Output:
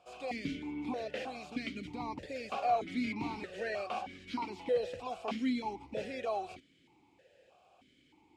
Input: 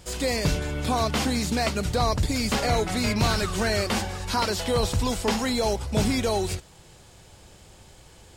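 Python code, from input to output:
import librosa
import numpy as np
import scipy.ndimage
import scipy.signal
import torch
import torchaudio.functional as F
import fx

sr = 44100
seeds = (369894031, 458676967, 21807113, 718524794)

y = fx.vowel_held(x, sr, hz=3.2)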